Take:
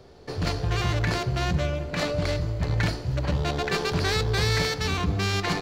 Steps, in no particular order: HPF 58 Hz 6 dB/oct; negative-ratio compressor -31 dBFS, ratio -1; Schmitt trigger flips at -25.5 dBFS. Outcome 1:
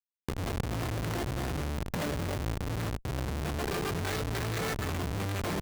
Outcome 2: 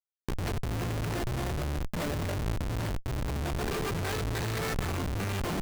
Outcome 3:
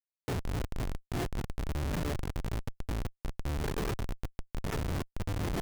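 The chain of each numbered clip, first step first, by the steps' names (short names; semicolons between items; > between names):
Schmitt trigger > negative-ratio compressor > HPF; HPF > Schmitt trigger > negative-ratio compressor; negative-ratio compressor > HPF > Schmitt trigger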